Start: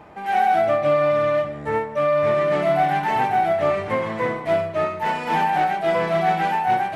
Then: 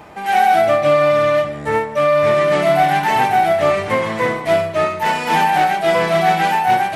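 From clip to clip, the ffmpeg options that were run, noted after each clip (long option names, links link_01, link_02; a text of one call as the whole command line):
ffmpeg -i in.wav -af "highshelf=frequency=3400:gain=11,volume=4.5dB" out.wav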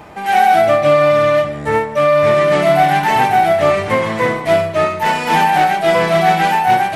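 ffmpeg -i in.wav -af "lowshelf=frequency=170:gain=3,volume=2dB" out.wav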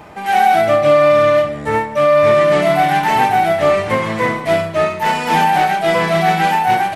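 ffmpeg -i in.wav -filter_complex "[0:a]asplit=2[link_01][link_02];[link_02]adelay=37,volume=-11dB[link_03];[link_01][link_03]amix=inputs=2:normalize=0,volume=-1dB" out.wav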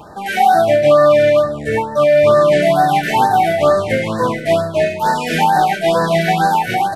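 ffmpeg -i in.wav -af "afftfilt=real='re*(1-between(b*sr/1024,950*pow(2700/950,0.5+0.5*sin(2*PI*2.2*pts/sr))/1.41,950*pow(2700/950,0.5+0.5*sin(2*PI*2.2*pts/sr))*1.41))':imag='im*(1-between(b*sr/1024,950*pow(2700/950,0.5+0.5*sin(2*PI*2.2*pts/sr))/1.41,950*pow(2700/950,0.5+0.5*sin(2*PI*2.2*pts/sr))*1.41))':win_size=1024:overlap=0.75,volume=1dB" out.wav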